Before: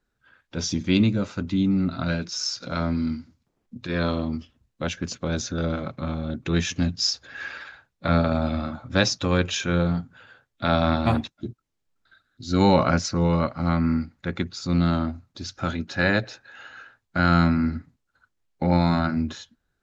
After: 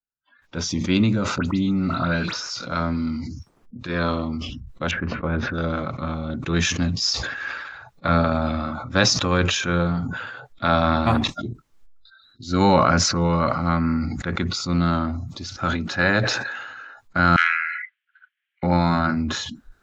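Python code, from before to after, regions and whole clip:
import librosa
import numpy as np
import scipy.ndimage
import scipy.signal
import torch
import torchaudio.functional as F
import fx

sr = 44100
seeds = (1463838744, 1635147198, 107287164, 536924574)

y = fx.chain(x, sr, fx.dispersion(late='highs', ms=79.0, hz=2700.0),
    fx.band_squash(depth_pct=70), at=(1.38, 2.5))
y = fx.chain(y, sr, fx.lowpass(hz=2300.0, slope=24),
    fx.low_shelf(hz=71.0, db=3.5),
    fx.doubler(ms=13.0, db=-11.5), at=(4.91, 5.54))
y = fx.chain(y, sr, fx.cheby1_bandpass(low_hz=1600.0, high_hz=3200.0, order=3),
    fx.transformer_sat(knee_hz=1100.0), at=(17.36, 18.63))
y = fx.peak_eq(y, sr, hz=1200.0, db=6.0, octaves=1.0)
y = fx.noise_reduce_blind(y, sr, reduce_db=28)
y = fx.sustainer(y, sr, db_per_s=37.0)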